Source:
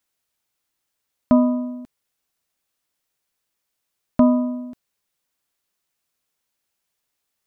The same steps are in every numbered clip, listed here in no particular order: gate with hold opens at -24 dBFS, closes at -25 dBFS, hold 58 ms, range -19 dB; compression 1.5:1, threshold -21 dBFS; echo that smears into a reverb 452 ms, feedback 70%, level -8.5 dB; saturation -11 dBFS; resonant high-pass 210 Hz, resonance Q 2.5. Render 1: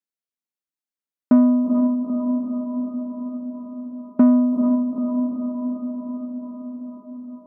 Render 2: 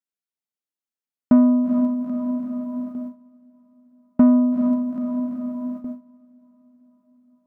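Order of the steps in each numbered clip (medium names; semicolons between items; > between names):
gate with hold > echo that smears into a reverb > compression > saturation > resonant high-pass; compression > echo that smears into a reverb > saturation > resonant high-pass > gate with hold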